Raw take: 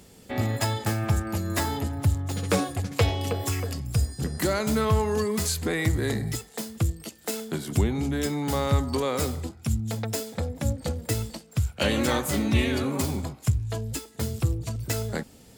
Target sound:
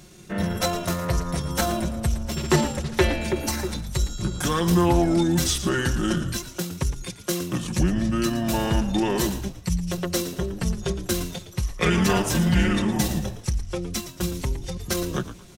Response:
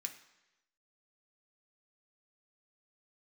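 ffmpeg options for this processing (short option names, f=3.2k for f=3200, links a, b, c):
-filter_complex "[0:a]aecho=1:1:4.4:0.68,asetrate=35002,aresample=44100,atempo=1.25992,asplit=4[a][b][c][d];[b]adelay=113,afreqshift=-85,volume=-12dB[e];[c]adelay=226,afreqshift=-170,volume=-21.9dB[f];[d]adelay=339,afreqshift=-255,volume=-31.8dB[g];[a][e][f][g]amix=inputs=4:normalize=0,volume=2dB"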